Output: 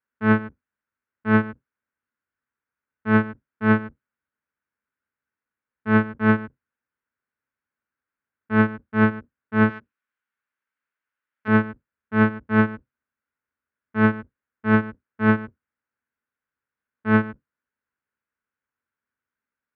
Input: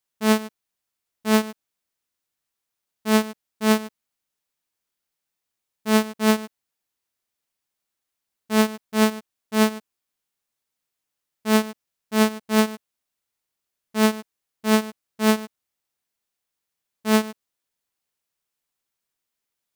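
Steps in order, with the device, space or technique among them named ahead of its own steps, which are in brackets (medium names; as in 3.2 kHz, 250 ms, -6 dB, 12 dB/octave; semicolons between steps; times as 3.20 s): 9.69–11.48 s: tilt EQ +3.5 dB/octave; sub-octave bass pedal (octave divider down 1 oct, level 0 dB; cabinet simulation 61–2100 Hz, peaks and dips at 110 Hz -5 dB, 170 Hz -8 dB, 240 Hz +5 dB, 350 Hz -4 dB, 710 Hz -9 dB, 1.5 kHz +9 dB)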